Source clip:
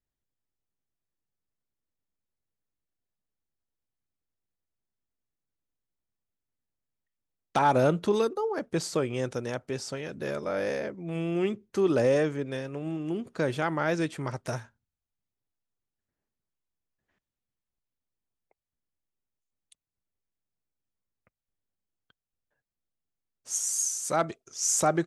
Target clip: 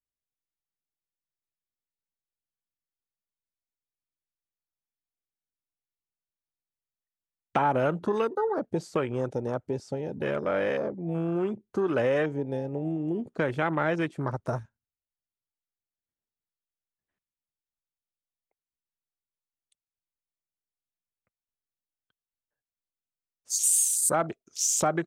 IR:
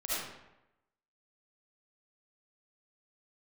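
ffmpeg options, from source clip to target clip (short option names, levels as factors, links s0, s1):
-filter_complex "[0:a]afwtdn=0.0126,acrossover=split=750|7500[s0][s1][s2];[s0]acompressor=threshold=0.0282:ratio=4[s3];[s1]acompressor=threshold=0.0282:ratio=4[s4];[s2]acompressor=threshold=0.0158:ratio=4[s5];[s3][s4][s5]amix=inputs=3:normalize=0,asettb=1/sr,asplit=3[s6][s7][s8];[s6]atrim=end=23.634[s9];[s7]atrim=start=23.63:end=24.15,asetpts=PTS-STARTPTS,afade=t=in:d=0.004:c=qsin,afade=t=out:st=0.516:d=0.004:c=qsin,highshelf=f=7400:t=q:w=3:g=6.5[s10];[s8]atrim=start=24.146[s11];[s9][s10]acrossfade=d=0.004:c1=hsin:c2=qsin[s12];[s12][s11]acrossfade=d=0.004:c1=qsin:c2=hsin,volume=1.68"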